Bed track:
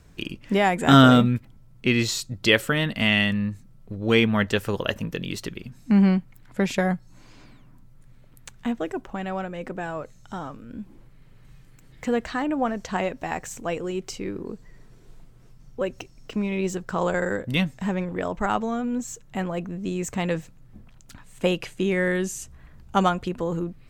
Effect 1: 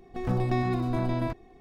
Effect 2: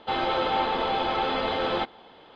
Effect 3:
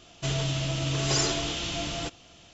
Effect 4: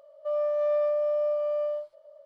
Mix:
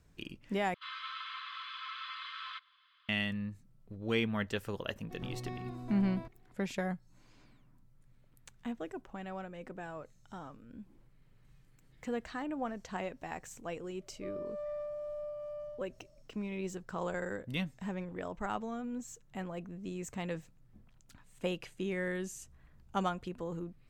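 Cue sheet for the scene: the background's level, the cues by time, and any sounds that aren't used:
bed track -12.5 dB
0.74 replace with 2 -11.5 dB + brick-wall FIR high-pass 1000 Hz
4.95 add 1 -15.5 dB
13.97 add 4 -14.5 dB
not used: 3

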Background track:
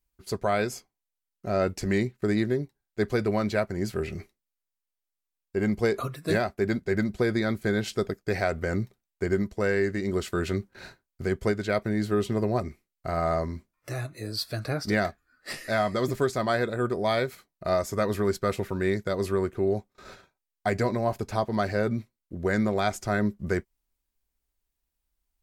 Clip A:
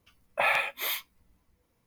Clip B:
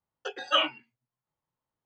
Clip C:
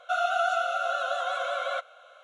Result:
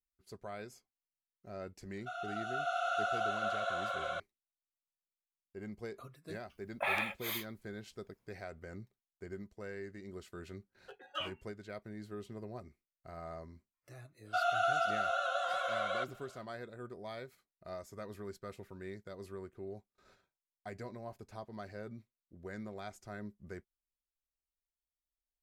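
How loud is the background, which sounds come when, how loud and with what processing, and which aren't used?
background track -19.5 dB
1.97 add C -16 dB + bloom reverb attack 0.65 s, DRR -8 dB
6.43 add A -8 dB
10.63 add B -15.5 dB + Wiener smoothing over 9 samples
14.24 add C -5.5 dB, fades 0.10 s

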